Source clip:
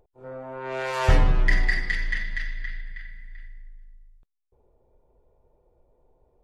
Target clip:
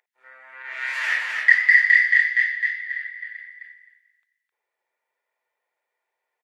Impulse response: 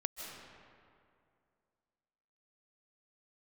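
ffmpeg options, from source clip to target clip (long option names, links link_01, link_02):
-filter_complex "[0:a]asettb=1/sr,asplit=3[link_01][link_02][link_03];[link_01]atrim=end=0.624[link_04];[link_02]atrim=start=0.62:end=3.32,asetpts=PTS-STARTPTS,afade=type=in:duration=0.004:curve=qsin,afade=type=out:start_time=2.696:duration=0.004:curve=qsin,flanger=delay=19:depth=6.2:speed=2.6[link_05];[link_03]atrim=start=3.316[link_06];[link_04][link_05]acrossfade=duration=0.004:curve1=hsin:curve2=qsin[link_07];[link_07][link_06]acrossfade=duration=0.004:curve1=qsin:curve2=hsin,highpass=frequency=1900:width_type=q:width=5.7,aecho=1:1:261|522|783:0.631|0.0946|0.0142"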